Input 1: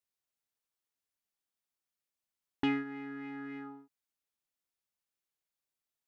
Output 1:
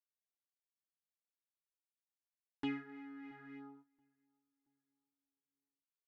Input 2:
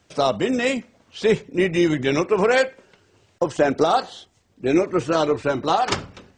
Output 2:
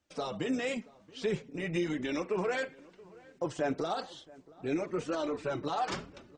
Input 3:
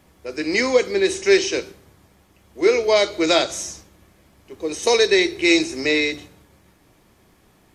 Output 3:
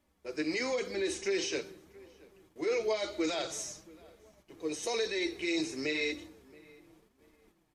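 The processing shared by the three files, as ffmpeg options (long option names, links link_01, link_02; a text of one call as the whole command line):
ffmpeg -i in.wav -filter_complex "[0:a]alimiter=limit=-14.5dB:level=0:latency=1:release=20,flanger=delay=3.3:depth=3.7:regen=-10:speed=0.96:shape=sinusoidal,asplit=2[link_01][link_02];[link_02]adelay=677,lowpass=frequency=1600:poles=1,volume=-22dB,asplit=2[link_03][link_04];[link_04]adelay=677,lowpass=frequency=1600:poles=1,volume=0.44,asplit=2[link_05][link_06];[link_06]adelay=677,lowpass=frequency=1600:poles=1,volume=0.44[link_07];[link_01][link_03][link_05][link_07]amix=inputs=4:normalize=0,agate=range=-9dB:threshold=-55dB:ratio=16:detection=peak,volume=-6.5dB" out.wav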